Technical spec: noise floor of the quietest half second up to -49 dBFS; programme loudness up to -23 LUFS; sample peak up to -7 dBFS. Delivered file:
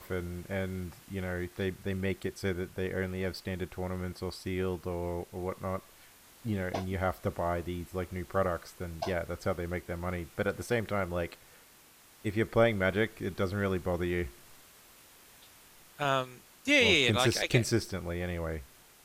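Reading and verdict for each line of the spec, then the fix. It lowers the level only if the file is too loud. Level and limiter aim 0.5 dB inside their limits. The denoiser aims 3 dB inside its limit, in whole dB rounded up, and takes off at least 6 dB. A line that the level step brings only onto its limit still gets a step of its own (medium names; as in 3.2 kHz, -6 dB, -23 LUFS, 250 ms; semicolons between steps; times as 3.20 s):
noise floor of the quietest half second -58 dBFS: pass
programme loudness -32.5 LUFS: pass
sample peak -11.5 dBFS: pass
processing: none needed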